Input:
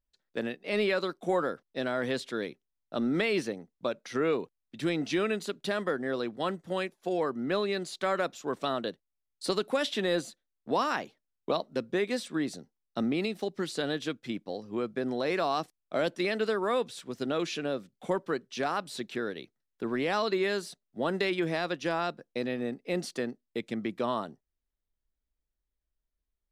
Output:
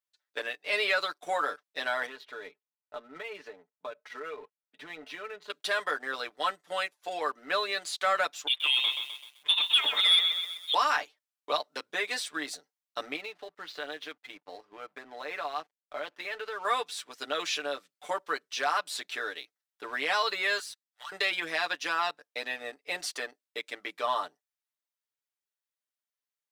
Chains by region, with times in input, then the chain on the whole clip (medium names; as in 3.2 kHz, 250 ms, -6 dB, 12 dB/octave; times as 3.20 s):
2.06–5.50 s: comb 4.7 ms, depth 52% + compression 5:1, threshold -31 dBFS + tape spacing loss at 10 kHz 33 dB
8.47–10.74 s: high-pass 230 Hz 6 dB/octave + frequency inversion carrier 3.9 kHz + bit-crushed delay 128 ms, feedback 55%, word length 9-bit, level -7 dB
13.16–16.65 s: distance through air 230 m + compression 2:1, threshold -35 dBFS + hysteresis with a dead band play -57 dBFS
20.59–21.12 s: high-pass 1.2 kHz 24 dB/octave + waveshaping leveller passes 2 + compression 4:1, threshold -46 dBFS
whole clip: high-pass 890 Hz 12 dB/octave; comb 6.8 ms, depth 81%; waveshaping leveller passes 1